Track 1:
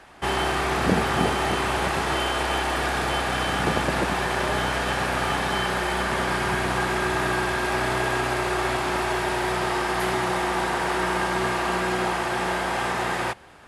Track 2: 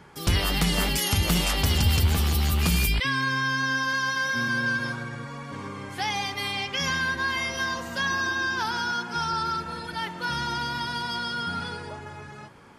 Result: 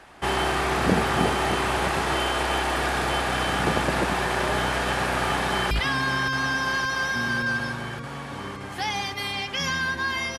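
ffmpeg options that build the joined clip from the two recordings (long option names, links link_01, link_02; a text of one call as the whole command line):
ffmpeg -i cue0.wav -i cue1.wav -filter_complex "[0:a]apad=whole_dur=10.38,atrim=end=10.38,atrim=end=5.712[link_01];[1:a]atrim=start=2.908:end=7.58[link_02];[link_01][link_02]acrossfade=duration=0.004:curve1=hsin:curve2=hsin,asplit=2[link_03][link_04];[link_04]afade=type=in:start_time=5.18:duration=0.01,afade=type=out:start_time=5.71:duration=0.01,aecho=0:1:570|1140|1710|2280|2850|3420|3990|4560|5130|5700|6270|6840:0.446684|0.357347|0.285877|0.228702|0.182962|0.146369|0.117095|0.0936763|0.0749411|0.0599529|0.0479623|0.0383698[link_05];[link_03][link_05]amix=inputs=2:normalize=0" out.wav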